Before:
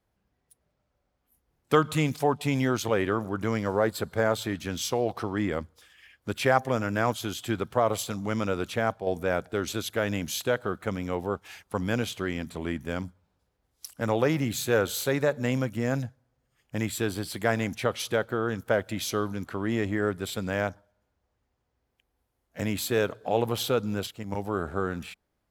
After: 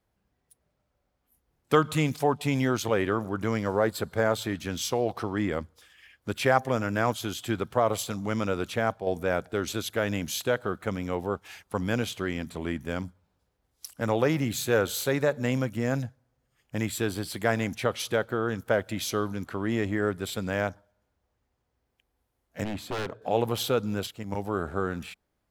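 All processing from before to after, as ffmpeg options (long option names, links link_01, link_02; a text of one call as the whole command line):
ffmpeg -i in.wav -filter_complex "[0:a]asettb=1/sr,asplit=3[link_01][link_02][link_03];[link_01]atrim=end=22.644[link_04];[link_02]atrim=start=22.64:end=23.22,asetpts=PTS-STARTPTS,afade=type=in:duration=0.004:curve=qsin,afade=type=out:start_time=0.576:duration=0.004:curve=qsin,lowpass=frequency=1500:poles=1,aeval=exprs='0.0501*(abs(mod(val(0)/0.0501+3,4)-2)-1)':channel_layout=same[link_05];[link_03]atrim=start=23.216[link_06];[link_04][link_05]acrossfade=duration=0.004:curve1=hsin:curve2=qsin[link_07];[link_07][link_06]acrossfade=duration=0.004:curve1=qsin:curve2=hsin" out.wav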